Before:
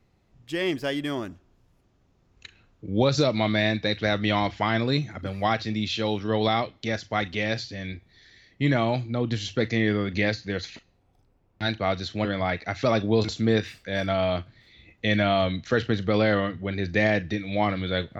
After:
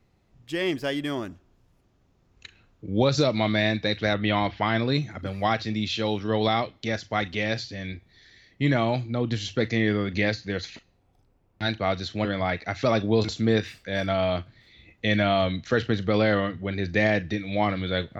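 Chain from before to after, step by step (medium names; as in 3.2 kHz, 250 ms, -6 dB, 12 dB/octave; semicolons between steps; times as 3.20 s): 4.13–4.93 s: low-pass 3.4 kHz -> 6.1 kHz 24 dB/octave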